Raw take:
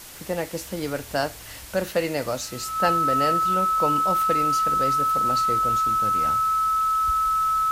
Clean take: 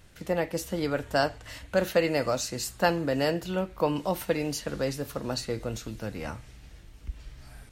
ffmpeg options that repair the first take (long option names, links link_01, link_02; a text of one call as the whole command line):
ffmpeg -i in.wav -af "bandreject=frequency=1300:width=30,afwtdn=0.0089" out.wav